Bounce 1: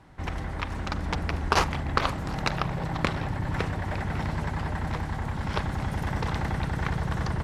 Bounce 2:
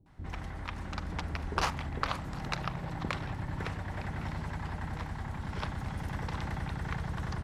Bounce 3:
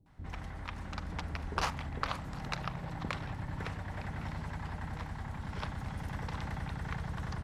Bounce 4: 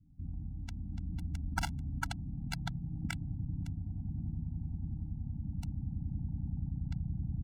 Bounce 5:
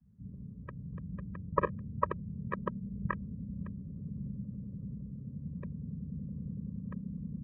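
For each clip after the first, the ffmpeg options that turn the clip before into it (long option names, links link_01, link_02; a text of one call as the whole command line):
ffmpeg -i in.wav -filter_complex "[0:a]acrossover=split=460[link_01][link_02];[link_02]adelay=60[link_03];[link_01][link_03]amix=inputs=2:normalize=0,volume=-7dB" out.wav
ffmpeg -i in.wav -af "equalizer=frequency=350:width_type=o:width=0.27:gain=-4,volume=-2.5dB" out.wav
ffmpeg -i in.wav -filter_complex "[0:a]acrossover=split=370[link_01][link_02];[link_02]acrusher=bits=3:mix=0:aa=0.5[link_03];[link_01][link_03]amix=inputs=2:normalize=0,afftfilt=real='re*eq(mod(floor(b*sr/1024/330),2),0)':imag='im*eq(mod(floor(b*sr/1024/330),2),0)':win_size=1024:overlap=0.75,volume=2.5dB" out.wav
ffmpeg -i in.wav -af "highpass=frequency=200:width_type=q:width=0.5412,highpass=frequency=200:width_type=q:width=1.307,lowpass=frequency=2100:width_type=q:width=0.5176,lowpass=frequency=2100:width_type=q:width=0.7071,lowpass=frequency=2100:width_type=q:width=1.932,afreqshift=-360,volume=8.5dB" out.wav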